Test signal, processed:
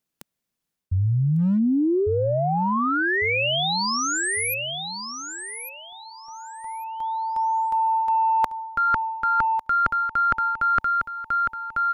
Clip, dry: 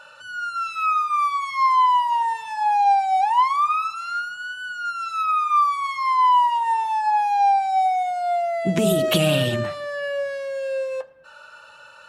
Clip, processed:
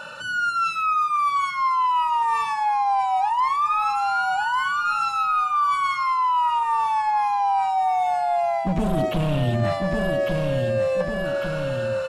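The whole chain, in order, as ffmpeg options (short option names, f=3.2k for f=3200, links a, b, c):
-filter_complex "[0:a]acrossover=split=2700[a][b];[b]acompressor=threshold=-36dB:ratio=4:attack=1:release=60[c];[a][c]amix=inputs=2:normalize=0,asplit=2[d][e];[e]asoftclip=type=tanh:threshold=-16.5dB,volume=-11.5dB[f];[d][f]amix=inputs=2:normalize=0,equalizer=f=190:t=o:w=1.7:g=12.5,volume=8.5dB,asoftclip=hard,volume=-8.5dB,aecho=1:1:1150|2300|3450:0.335|0.0804|0.0193,asubboost=boost=6.5:cutoff=69,areverse,acompressor=threshold=-26dB:ratio=6,areverse,volume=6dB"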